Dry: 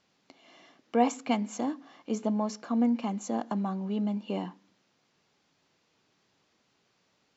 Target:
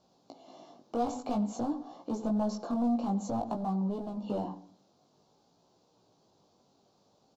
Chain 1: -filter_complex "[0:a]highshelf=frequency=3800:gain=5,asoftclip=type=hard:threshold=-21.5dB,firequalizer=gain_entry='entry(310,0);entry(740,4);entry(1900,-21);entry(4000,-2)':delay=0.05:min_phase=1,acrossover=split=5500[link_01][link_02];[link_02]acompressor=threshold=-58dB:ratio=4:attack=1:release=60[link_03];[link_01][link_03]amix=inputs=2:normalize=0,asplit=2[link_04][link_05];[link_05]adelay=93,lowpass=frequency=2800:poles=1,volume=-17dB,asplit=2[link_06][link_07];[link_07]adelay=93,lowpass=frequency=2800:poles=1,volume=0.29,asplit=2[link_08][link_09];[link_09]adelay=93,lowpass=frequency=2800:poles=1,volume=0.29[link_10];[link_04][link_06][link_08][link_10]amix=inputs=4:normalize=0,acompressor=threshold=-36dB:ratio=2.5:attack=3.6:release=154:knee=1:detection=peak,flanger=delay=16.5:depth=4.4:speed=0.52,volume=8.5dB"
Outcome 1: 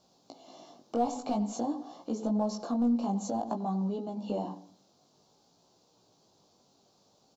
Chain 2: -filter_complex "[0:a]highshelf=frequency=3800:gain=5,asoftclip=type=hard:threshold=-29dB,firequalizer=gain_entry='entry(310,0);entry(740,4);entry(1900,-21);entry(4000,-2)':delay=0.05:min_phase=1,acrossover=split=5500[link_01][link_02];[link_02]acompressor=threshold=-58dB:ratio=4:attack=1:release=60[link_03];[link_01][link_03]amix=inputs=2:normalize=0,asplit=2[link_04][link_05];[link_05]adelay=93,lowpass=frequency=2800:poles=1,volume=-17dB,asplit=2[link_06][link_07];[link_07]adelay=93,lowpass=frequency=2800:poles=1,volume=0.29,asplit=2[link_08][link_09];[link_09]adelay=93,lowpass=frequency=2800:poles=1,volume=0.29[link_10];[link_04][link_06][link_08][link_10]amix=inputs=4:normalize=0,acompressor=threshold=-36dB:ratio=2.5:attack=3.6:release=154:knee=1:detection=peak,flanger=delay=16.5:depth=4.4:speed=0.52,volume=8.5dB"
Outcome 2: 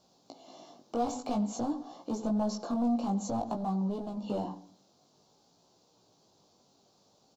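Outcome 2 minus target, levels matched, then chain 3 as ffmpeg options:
8,000 Hz band +5.0 dB
-filter_complex "[0:a]highshelf=frequency=3800:gain=-4,asoftclip=type=hard:threshold=-29dB,firequalizer=gain_entry='entry(310,0);entry(740,4);entry(1900,-21);entry(4000,-2)':delay=0.05:min_phase=1,acrossover=split=5500[link_01][link_02];[link_02]acompressor=threshold=-58dB:ratio=4:attack=1:release=60[link_03];[link_01][link_03]amix=inputs=2:normalize=0,asplit=2[link_04][link_05];[link_05]adelay=93,lowpass=frequency=2800:poles=1,volume=-17dB,asplit=2[link_06][link_07];[link_07]adelay=93,lowpass=frequency=2800:poles=1,volume=0.29,asplit=2[link_08][link_09];[link_09]adelay=93,lowpass=frequency=2800:poles=1,volume=0.29[link_10];[link_04][link_06][link_08][link_10]amix=inputs=4:normalize=0,acompressor=threshold=-36dB:ratio=2.5:attack=3.6:release=154:knee=1:detection=peak,flanger=delay=16.5:depth=4.4:speed=0.52,volume=8.5dB"

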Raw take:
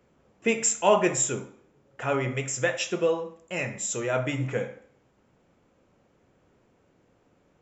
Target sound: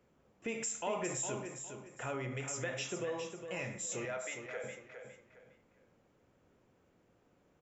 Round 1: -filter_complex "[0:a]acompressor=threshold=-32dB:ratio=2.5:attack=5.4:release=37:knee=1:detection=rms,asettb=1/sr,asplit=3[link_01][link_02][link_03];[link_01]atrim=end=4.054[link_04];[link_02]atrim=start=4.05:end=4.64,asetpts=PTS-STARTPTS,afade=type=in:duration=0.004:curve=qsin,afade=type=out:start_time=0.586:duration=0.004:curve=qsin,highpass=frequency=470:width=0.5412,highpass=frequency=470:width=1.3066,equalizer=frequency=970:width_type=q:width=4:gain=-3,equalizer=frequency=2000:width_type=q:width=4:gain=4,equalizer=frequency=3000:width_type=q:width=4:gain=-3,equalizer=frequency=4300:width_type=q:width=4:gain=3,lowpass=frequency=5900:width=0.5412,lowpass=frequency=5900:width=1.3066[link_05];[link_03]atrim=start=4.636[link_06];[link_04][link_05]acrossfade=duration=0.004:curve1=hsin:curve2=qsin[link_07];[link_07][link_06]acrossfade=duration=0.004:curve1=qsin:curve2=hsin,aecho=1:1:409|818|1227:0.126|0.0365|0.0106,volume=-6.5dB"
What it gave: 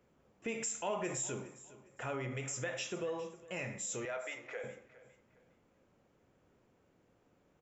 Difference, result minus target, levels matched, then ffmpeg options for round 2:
echo-to-direct −10 dB
-filter_complex "[0:a]acompressor=threshold=-32dB:ratio=2.5:attack=5.4:release=37:knee=1:detection=rms,asettb=1/sr,asplit=3[link_01][link_02][link_03];[link_01]atrim=end=4.054[link_04];[link_02]atrim=start=4.05:end=4.64,asetpts=PTS-STARTPTS,afade=type=in:duration=0.004:curve=qsin,afade=type=out:start_time=0.586:duration=0.004:curve=qsin,highpass=frequency=470:width=0.5412,highpass=frequency=470:width=1.3066,equalizer=frequency=970:width_type=q:width=4:gain=-3,equalizer=frequency=2000:width_type=q:width=4:gain=4,equalizer=frequency=3000:width_type=q:width=4:gain=-3,equalizer=frequency=4300:width_type=q:width=4:gain=3,lowpass=frequency=5900:width=0.5412,lowpass=frequency=5900:width=1.3066[link_05];[link_03]atrim=start=4.636[link_06];[link_04][link_05]acrossfade=duration=0.004:curve1=hsin:curve2=qsin[link_07];[link_07][link_06]acrossfade=duration=0.004:curve1=qsin:curve2=hsin,aecho=1:1:409|818|1227:0.398|0.115|0.0335,volume=-6.5dB"

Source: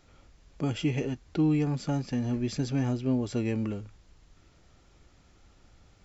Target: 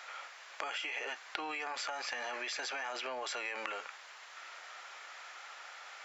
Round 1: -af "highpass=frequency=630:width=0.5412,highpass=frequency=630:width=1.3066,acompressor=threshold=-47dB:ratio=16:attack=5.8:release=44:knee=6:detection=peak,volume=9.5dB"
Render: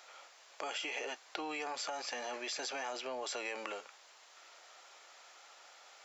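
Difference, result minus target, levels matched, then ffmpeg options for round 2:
2,000 Hz band −4.5 dB
-af "highpass=frequency=630:width=0.5412,highpass=frequency=630:width=1.3066,equalizer=frequency=1700:width_type=o:width=2.1:gain=12,acompressor=threshold=-47dB:ratio=16:attack=5.8:release=44:knee=6:detection=peak,volume=9.5dB"

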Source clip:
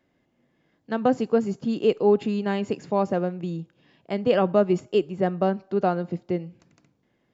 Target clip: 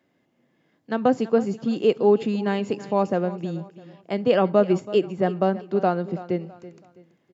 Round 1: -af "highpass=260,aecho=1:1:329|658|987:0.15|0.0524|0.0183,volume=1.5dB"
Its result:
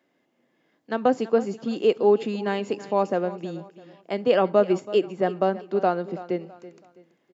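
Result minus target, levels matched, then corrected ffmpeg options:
125 Hz band −5.0 dB
-af "highpass=120,aecho=1:1:329|658|987:0.15|0.0524|0.0183,volume=1.5dB"

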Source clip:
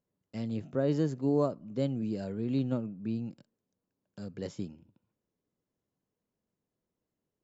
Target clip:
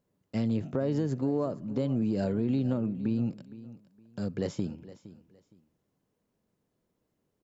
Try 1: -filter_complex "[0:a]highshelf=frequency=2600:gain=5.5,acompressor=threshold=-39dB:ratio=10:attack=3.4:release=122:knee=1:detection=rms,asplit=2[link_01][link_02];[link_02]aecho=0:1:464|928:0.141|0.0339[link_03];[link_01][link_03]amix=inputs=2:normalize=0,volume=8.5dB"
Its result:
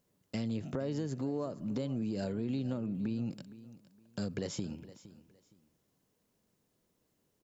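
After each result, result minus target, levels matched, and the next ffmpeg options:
4,000 Hz band +7.5 dB; downward compressor: peak gain reduction +7 dB
-filter_complex "[0:a]highshelf=frequency=2600:gain=-4,acompressor=threshold=-39dB:ratio=10:attack=3.4:release=122:knee=1:detection=rms,asplit=2[link_01][link_02];[link_02]aecho=0:1:464|928:0.141|0.0339[link_03];[link_01][link_03]amix=inputs=2:normalize=0,volume=8.5dB"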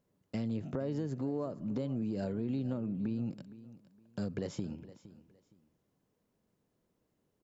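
downward compressor: peak gain reduction +7 dB
-filter_complex "[0:a]highshelf=frequency=2600:gain=-4,acompressor=threshold=-31.5dB:ratio=10:attack=3.4:release=122:knee=1:detection=rms,asplit=2[link_01][link_02];[link_02]aecho=0:1:464|928:0.141|0.0339[link_03];[link_01][link_03]amix=inputs=2:normalize=0,volume=8.5dB"

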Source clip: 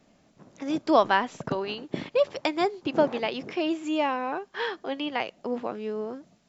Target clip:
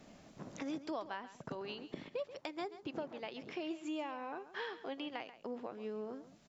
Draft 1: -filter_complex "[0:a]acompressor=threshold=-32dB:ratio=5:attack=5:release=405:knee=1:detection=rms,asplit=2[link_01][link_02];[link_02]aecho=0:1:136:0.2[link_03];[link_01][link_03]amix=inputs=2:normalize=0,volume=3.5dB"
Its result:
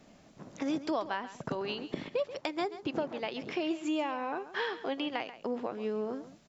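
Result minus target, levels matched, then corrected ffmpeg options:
downward compressor: peak gain reduction −8.5 dB
-filter_complex "[0:a]acompressor=threshold=-42.5dB:ratio=5:attack=5:release=405:knee=1:detection=rms,asplit=2[link_01][link_02];[link_02]aecho=0:1:136:0.2[link_03];[link_01][link_03]amix=inputs=2:normalize=0,volume=3.5dB"

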